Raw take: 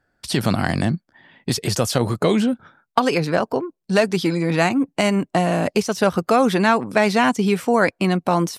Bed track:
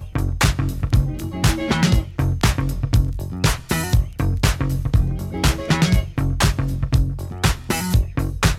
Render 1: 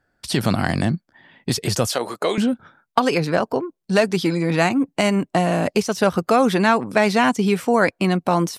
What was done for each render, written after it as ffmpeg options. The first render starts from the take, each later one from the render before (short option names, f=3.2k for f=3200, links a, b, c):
-filter_complex "[0:a]asettb=1/sr,asplit=3[a][b][c];[a]atrim=end=1.874[d];[b]atrim=start=1.87:end=2.38,asetpts=PTS-STARTPTS,afade=t=in:d=0.004:c=qsin,afade=t=out:st=0.506:d=0.004:c=qsin,highpass=450[e];[c]atrim=start=2.376[f];[d][e]acrossfade=d=0.004:c1=hsin:c2=qsin[g];[g][f]acrossfade=d=0.004:c1=qsin:c2=hsin"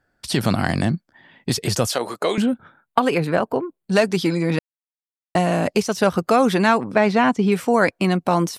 -filter_complex "[0:a]asettb=1/sr,asplit=3[a][b][c];[a]atrim=end=2.424[d];[b]atrim=start=2.42:end=3.92,asetpts=PTS-STARTPTS,afade=t=in:d=0.004:c=qsin,afade=t=out:st=1.496:d=0.004:c=qsin,equalizer=f=5.5k:t=o:w=0.58:g=-13.5[e];[c]atrim=start=3.916[f];[d][e]acrossfade=d=0.004:c1=hsin:c2=qsin[g];[g][f]acrossfade=d=0.004:c1=qsin:c2=hsin,asettb=1/sr,asplit=3[h][i][j];[h]atrim=end=6.854[k];[i]atrim=start=6.85:end=7.52,asetpts=PTS-STARTPTS,afade=t=in:d=0.004:c=qsin,afade=t=out:st=0.666:d=0.004:c=qsin,aemphasis=mode=reproduction:type=75fm[l];[j]atrim=start=7.516[m];[k][l]acrossfade=d=0.004:c1=hsin:c2=qsin[n];[n][m]acrossfade=d=0.004:c1=qsin:c2=hsin,asplit=3[o][p][q];[o]atrim=end=4.59,asetpts=PTS-STARTPTS,afade=t=out:st=4.586:d=0.004:c=hsin[r];[p]atrim=start=4.59:end=5.35,asetpts=PTS-STARTPTS,volume=0[s];[q]atrim=start=5.35,asetpts=PTS-STARTPTS,afade=t=in:d=0.004:c=hsin[t];[r][s][t]concat=n=3:v=0:a=1"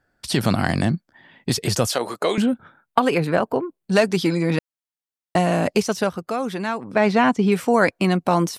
-filter_complex "[0:a]asplit=3[a][b][c];[a]atrim=end=6.15,asetpts=PTS-STARTPTS,afade=t=out:st=5.91:d=0.24:silence=0.354813[d];[b]atrim=start=6.15:end=6.81,asetpts=PTS-STARTPTS,volume=-9dB[e];[c]atrim=start=6.81,asetpts=PTS-STARTPTS,afade=t=in:d=0.24:silence=0.354813[f];[d][e][f]concat=n=3:v=0:a=1"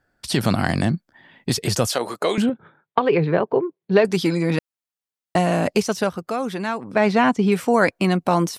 -filter_complex "[0:a]asettb=1/sr,asplit=3[a][b][c];[a]atrim=end=2.494[d];[b]atrim=start=2.49:end=4.05,asetpts=PTS-STARTPTS,afade=t=in:d=0.004:c=qsin,afade=t=out:st=1.556:d=0.004:c=qsin,highpass=110,equalizer=f=150:t=q:w=4:g=5,equalizer=f=250:t=q:w=4:g=-6,equalizer=f=400:t=q:w=4:g=8,equalizer=f=700:t=q:w=4:g=-3,equalizer=f=1.4k:t=q:w=4:g=-5,equalizer=f=2.8k:t=q:w=4:g=-4,lowpass=f=3.6k:w=0.5412,lowpass=f=3.6k:w=1.3066[e];[c]atrim=start=4.046[f];[d][e]acrossfade=d=0.004:c1=hsin:c2=qsin[g];[g][f]acrossfade=d=0.004:c1=qsin:c2=hsin"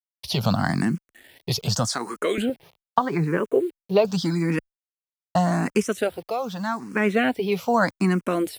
-filter_complex "[0:a]acrusher=bits=7:mix=0:aa=0.000001,asplit=2[a][b];[b]afreqshift=0.83[c];[a][c]amix=inputs=2:normalize=1"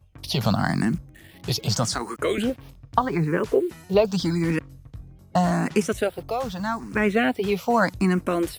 -filter_complex "[1:a]volume=-23.5dB[a];[0:a][a]amix=inputs=2:normalize=0"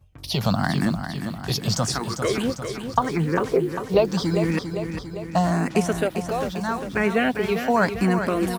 -af "aecho=1:1:399|798|1197|1596|1995|2394|2793:0.398|0.231|0.134|0.0777|0.0451|0.0261|0.0152"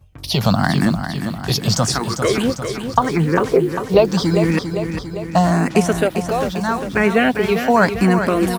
-af "volume=6dB,alimiter=limit=-1dB:level=0:latency=1"